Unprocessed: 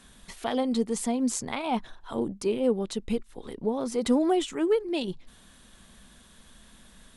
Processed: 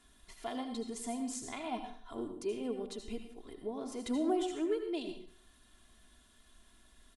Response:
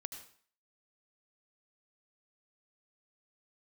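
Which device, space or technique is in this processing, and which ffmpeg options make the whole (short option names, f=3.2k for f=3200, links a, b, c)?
microphone above a desk: -filter_complex "[0:a]aecho=1:1:2.9:0.67[a];[1:a]atrim=start_sample=2205[b];[a][b]afir=irnorm=-1:irlink=0,volume=-8.5dB"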